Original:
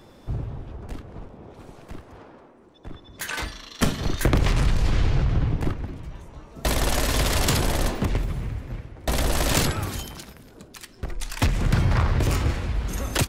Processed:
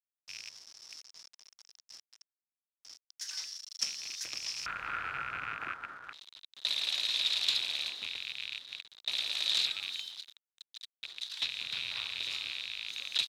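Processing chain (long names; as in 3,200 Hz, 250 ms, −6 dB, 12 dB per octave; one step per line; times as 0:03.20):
loose part that buzzes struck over −28 dBFS, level −15 dBFS
bit-depth reduction 6 bits, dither none
resonant band-pass 5,400 Hz, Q 10, from 0:04.66 1,400 Hz, from 0:06.13 3,800 Hz
level +7.5 dB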